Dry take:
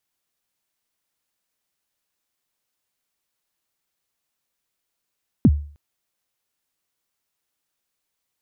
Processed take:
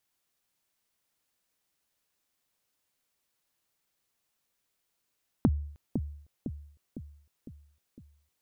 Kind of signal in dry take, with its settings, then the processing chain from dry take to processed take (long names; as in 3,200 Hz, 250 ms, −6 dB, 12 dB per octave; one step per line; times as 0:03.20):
synth kick length 0.31 s, from 300 Hz, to 73 Hz, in 47 ms, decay 0.44 s, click off, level −6.5 dB
downward compressor 6 to 1, threshold −23 dBFS
on a send: bucket-brigade delay 505 ms, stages 2,048, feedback 55%, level −7 dB